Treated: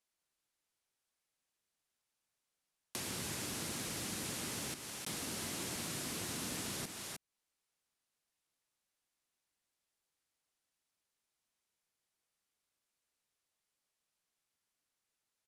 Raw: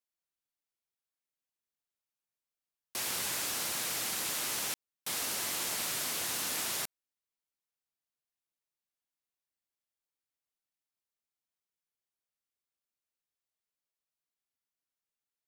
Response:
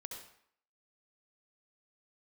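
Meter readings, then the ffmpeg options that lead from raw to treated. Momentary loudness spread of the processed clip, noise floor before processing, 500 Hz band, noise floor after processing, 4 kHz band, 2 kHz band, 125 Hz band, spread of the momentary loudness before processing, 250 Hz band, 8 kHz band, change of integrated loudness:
4 LU, under -85 dBFS, -1.5 dB, under -85 dBFS, -7.0 dB, -6.5 dB, +6.5 dB, 5 LU, +5.0 dB, -7.0 dB, -7.0 dB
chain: -filter_complex "[0:a]lowpass=f=12000:w=0.5412,lowpass=f=12000:w=1.3066,asplit=2[s0][s1];[s1]aecho=0:1:309:0.376[s2];[s0][s2]amix=inputs=2:normalize=0,acrossover=split=340[s3][s4];[s4]acompressor=threshold=0.00251:ratio=3[s5];[s3][s5]amix=inputs=2:normalize=0,volume=2.11"

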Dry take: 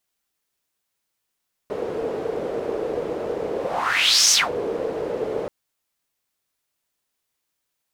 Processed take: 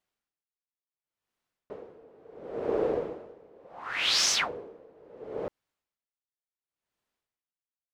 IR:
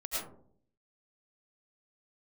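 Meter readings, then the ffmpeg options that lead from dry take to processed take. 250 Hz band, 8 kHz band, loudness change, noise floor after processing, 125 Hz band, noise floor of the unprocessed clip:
-8.5 dB, -10.5 dB, -6.5 dB, under -85 dBFS, -9.0 dB, -79 dBFS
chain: -af "lowpass=f=2100:p=1,aeval=exprs='val(0)*pow(10,-28*(0.5-0.5*cos(2*PI*0.71*n/s))/20)':c=same"

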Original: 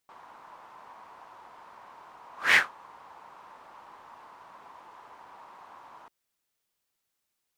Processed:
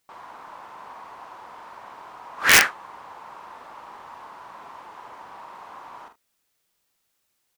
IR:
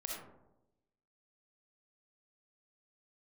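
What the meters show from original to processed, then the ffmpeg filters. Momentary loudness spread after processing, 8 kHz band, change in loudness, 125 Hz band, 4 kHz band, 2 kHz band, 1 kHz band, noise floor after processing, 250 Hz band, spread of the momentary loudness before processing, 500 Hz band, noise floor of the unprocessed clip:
10 LU, +19.5 dB, +7.5 dB, no reading, +10.0 dB, +5.5 dB, +8.0 dB, -74 dBFS, +11.0 dB, 12 LU, +9.0 dB, -82 dBFS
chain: -filter_complex "[0:a]asplit=2[s0][s1];[s1]aecho=0:1:45|76:0.447|0.133[s2];[s0][s2]amix=inputs=2:normalize=0,aeval=exprs='(mod(4.22*val(0)+1,2)-1)/4.22':c=same,volume=2.24"

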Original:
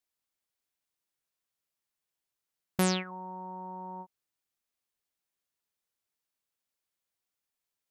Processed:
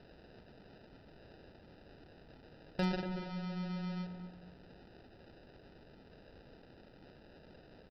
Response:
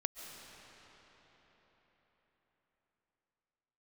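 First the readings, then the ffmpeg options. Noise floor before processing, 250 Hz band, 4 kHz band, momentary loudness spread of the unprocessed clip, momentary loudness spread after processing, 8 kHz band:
under -85 dBFS, -2.5 dB, -8.5 dB, 16 LU, 20 LU, under -25 dB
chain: -filter_complex "[0:a]aeval=exprs='val(0)+0.5*0.0119*sgn(val(0))':c=same,equalizer=f=110:w=4.7:g=-10.5,aecho=1:1:1.2:0.71,aresample=11025,acrusher=samples=10:mix=1:aa=0.000001,aresample=44100,asoftclip=type=hard:threshold=0.126,asplit=2[s0][s1];[s1]adelay=236,lowpass=f=1200:p=1,volume=0.473,asplit=2[s2][s3];[s3]adelay=236,lowpass=f=1200:p=1,volume=0.36,asplit=2[s4][s5];[s5]adelay=236,lowpass=f=1200:p=1,volume=0.36,asplit=2[s6][s7];[s7]adelay=236,lowpass=f=1200:p=1,volume=0.36[s8];[s2][s4][s6][s8]amix=inputs=4:normalize=0[s9];[s0][s9]amix=inputs=2:normalize=0,volume=0.398"

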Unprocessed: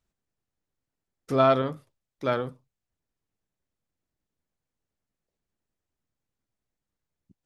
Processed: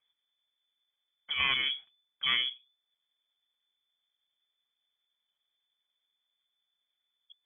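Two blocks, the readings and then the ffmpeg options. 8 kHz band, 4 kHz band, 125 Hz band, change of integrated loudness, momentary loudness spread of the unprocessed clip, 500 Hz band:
no reading, +14.5 dB, -22.5 dB, -4.0 dB, 12 LU, -31.5 dB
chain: -af "asuperstop=centerf=660:order=4:qfactor=1.2,afftfilt=real='re*lt(hypot(re,im),0.251)':imag='im*lt(hypot(re,im),0.251)':win_size=1024:overlap=0.75,lowpass=f=3000:t=q:w=0.5098,lowpass=f=3000:t=q:w=0.6013,lowpass=f=3000:t=q:w=0.9,lowpass=f=3000:t=q:w=2.563,afreqshift=-3500,volume=1.33"

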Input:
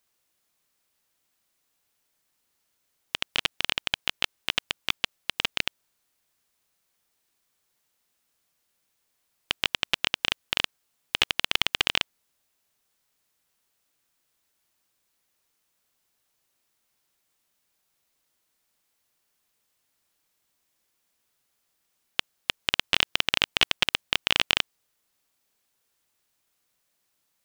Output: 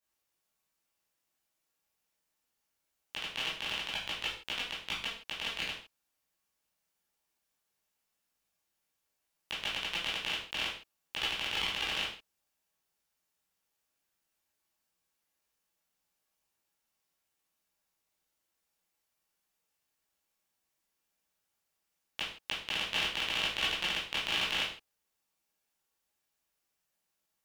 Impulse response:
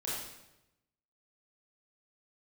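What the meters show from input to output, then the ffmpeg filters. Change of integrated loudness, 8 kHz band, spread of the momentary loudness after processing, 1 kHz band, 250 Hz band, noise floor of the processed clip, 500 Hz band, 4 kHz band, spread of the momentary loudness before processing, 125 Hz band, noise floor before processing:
-7.0 dB, -7.5 dB, 9 LU, -6.0 dB, -6.5 dB, -83 dBFS, -6.5 dB, -7.5 dB, 9 LU, -7.0 dB, -75 dBFS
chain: -filter_complex "[1:a]atrim=start_sample=2205,afade=t=out:st=0.39:d=0.01,atrim=end_sample=17640,asetrate=79380,aresample=44100[s0];[0:a][s0]afir=irnorm=-1:irlink=0,volume=0.531"

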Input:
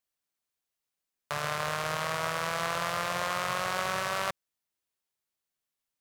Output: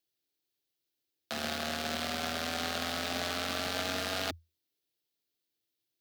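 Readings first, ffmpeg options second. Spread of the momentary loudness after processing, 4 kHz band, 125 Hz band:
4 LU, +2.5 dB, -5.0 dB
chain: -af "equalizer=f=125:t=o:w=1:g=-8,equalizer=f=250:t=o:w=1:g=9,equalizer=f=500:t=o:w=1:g=-3,equalizer=f=1000:t=o:w=1:g=-12,equalizer=f=2000:t=o:w=1:g=-4,equalizer=f=4000:t=o:w=1:g=5,equalizer=f=8000:t=o:w=1:g=-8,aeval=exprs='0.141*(cos(1*acos(clip(val(0)/0.141,-1,1)))-cos(1*PI/2))+0.00891*(cos(4*acos(clip(val(0)/0.141,-1,1)))-cos(4*PI/2))+0.0112*(cos(8*acos(clip(val(0)/0.141,-1,1)))-cos(8*PI/2))':c=same,afreqshift=82,volume=1.5"

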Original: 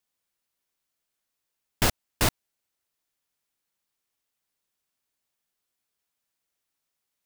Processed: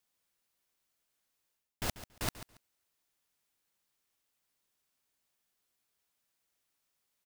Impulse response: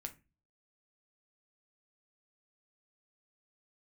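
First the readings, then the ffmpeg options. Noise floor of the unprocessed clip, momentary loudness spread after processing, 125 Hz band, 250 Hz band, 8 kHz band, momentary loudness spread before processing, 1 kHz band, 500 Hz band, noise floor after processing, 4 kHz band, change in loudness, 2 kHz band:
-83 dBFS, 14 LU, -12.0 dB, -11.5 dB, -12.0 dB, 0 LU, -12.0 dB, -12.5 dB, -82 dBFS, -12.0 dB, -12.0 dB, -12.5 dB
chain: -af "areverse,acompressor=threshold=0.0178:ratio=6,areverse,aecho=1:1:140|280:0.2|0.0359,volume=1.12"

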